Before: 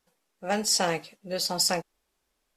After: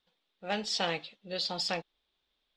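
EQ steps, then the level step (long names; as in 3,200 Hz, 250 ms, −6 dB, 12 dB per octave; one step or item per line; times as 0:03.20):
low-pass with resonance 3,600 Hz, resonance Q 5.4
−6.5 dB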